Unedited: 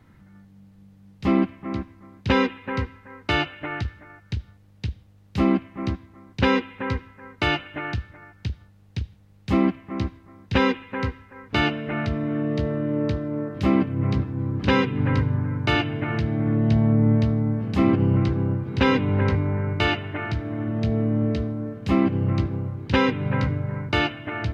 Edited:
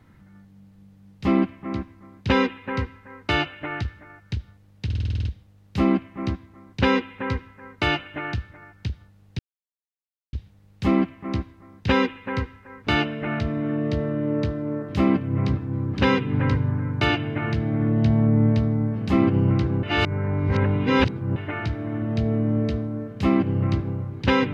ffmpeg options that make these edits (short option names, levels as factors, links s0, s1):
-filter_complex "[0:a]asplit=12[s0][s1][s2][s3][s4][s5][s6][s7][s8][s9][s10][s11];[s0]atrim=end=4.902[s12];[s1]atrim=start=4.848:end=4.902[s13];[s2]atrim=start=4.848:end=4.902[s14];[s3]atrim=start=4.848:end=4.902[s15];[s4]atrim=start=4.848:end=4.902[s16];[s5]atrim=start=4.848:end=4.902[s17];[s6]atrim=start=4.848:end=4.902[s18];[s7]atrim=start=4.848:end=4.902[s19];[s8]atrim=start=4.848:end=8.99,asetpts=PTS-STARTPTS,afade=t=out:st=4.138:d=0.004:c=hsin,apad=pad_dur=0.94[s20];[s9]atrim=start=8.99:end=18.492,asetpts=PTS-STARTPTS,afade=t=in:d=0.004:c=hsin[s21];[s10]atrim=start=18.488:end=20.022,asetpts=PTS-STARTPTS,areverse[s22];[s11]atrim=start=20.018[s23];[s12][s13]acrossfade=d=0.004:c1=hsin:c2=hsin[s24];[s24][s14]acrossfade=d=0.004:c1=hsin:c2=hsin[s25];[s25][s15]acrossfade=d=0.004:c1=hsin:c2=hsin[s26];[s26][s16]acrossfade=d=0.004:c1=hsin:c2=hsin[s27];[s27][s17]acrossfade=d=0.004:c1=hsin:c2=hsin[s28];[s28][s18]acrossfade=d=0.004:c1=hsin:c2=hsin[s29];[s29][s19]acrossfade=d=0.004:c1=hsin:c2=hsin[s30];[s20][s21]concat=n=2:v=0:a=1[s31];[s30][s31]acrossfade=d=0.004:c1=hsin:c2=hsin[s32];[s32][s22]acrossfade=d=0.004:c1=hsin:c2=hsin[s33];[s33][s23]acrossfade=d=0.004:c1=hsin:c2=hsin"